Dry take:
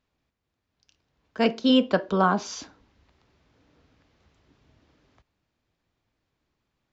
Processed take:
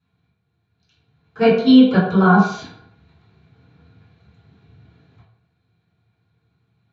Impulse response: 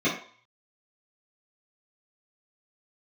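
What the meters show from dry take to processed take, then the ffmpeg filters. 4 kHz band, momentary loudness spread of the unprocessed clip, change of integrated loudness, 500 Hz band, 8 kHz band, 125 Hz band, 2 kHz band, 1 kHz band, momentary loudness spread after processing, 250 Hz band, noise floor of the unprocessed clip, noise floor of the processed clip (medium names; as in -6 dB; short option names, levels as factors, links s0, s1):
+2.0 dB, 18 LU, +9.0 dB, +7.0 dB, no reading, +14.0 dB, +8.5 dB, +6.0 dB, 9 LU, +11.0 dB, -81 dBFS, -71 dBFS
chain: -filter_complex "[0:a]equalizer=f=125:t=o:w=1:g=7,equalizer=f=250:t=o:w=1:g=-9,equalizer=f=2000:t=o:w=1:g=-3,equalizer=f=4000:t=o:w=1:g=6[s0];[1:a]atrim=start_sample=2205,afade=t=out:st=0.25:d=0.01,atrim=end_sample=11466,asetrate=28665,aresample=44100[s1];[s0][s1]afir=irnorm=-1:irlink=0,volume=0.355"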